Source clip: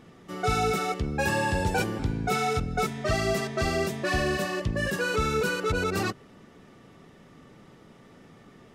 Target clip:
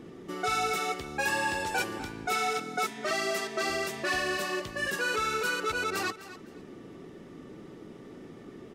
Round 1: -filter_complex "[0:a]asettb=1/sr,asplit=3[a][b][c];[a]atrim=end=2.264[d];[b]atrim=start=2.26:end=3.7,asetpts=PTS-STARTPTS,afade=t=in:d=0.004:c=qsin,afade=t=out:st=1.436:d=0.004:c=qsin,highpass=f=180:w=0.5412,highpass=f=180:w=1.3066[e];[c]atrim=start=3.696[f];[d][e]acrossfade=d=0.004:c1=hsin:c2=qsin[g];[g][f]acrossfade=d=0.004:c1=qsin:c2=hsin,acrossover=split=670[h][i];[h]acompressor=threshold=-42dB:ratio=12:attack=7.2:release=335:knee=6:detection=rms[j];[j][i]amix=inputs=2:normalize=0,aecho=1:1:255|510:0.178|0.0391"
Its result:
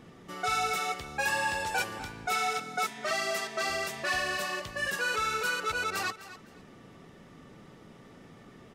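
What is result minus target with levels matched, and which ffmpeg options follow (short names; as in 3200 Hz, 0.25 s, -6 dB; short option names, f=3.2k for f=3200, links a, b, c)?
250 Hz band -6.5 dB
-filter_complex "[0:a]asettb=1/sr,asplit=3[a][b][c];[a]atrim=end=2.264[d];[b]atrim=start=2.26:end=3.7,asetpts=PTS-STARTPTS,afade=t=in:d=0.004:c=qsin,afade=t=out:st=1.436:d=0.004:c=qsin,highpass=f=180:w=0.5412,highpass=f=180:w=1.3066[e];[c]atrim=start=3.696[f];[d][e]acrossfade=d=0.004:c1=hsin:c2=qsin[g];[g][f]acrossfade=d=0.004:c1=qsin:c2=hsin,acrossover=split=670[h][i];[h]acompressor=threshold=-42dB:ratio=12:attack=7.2:release=335:knee=6:detection=rms,equalizer=f=350:t=o:w=1.1:g=11.5[j];[j][i]amix=inputs=2:normalize=0,aecho=1:1:255|510:0.178|0.0391"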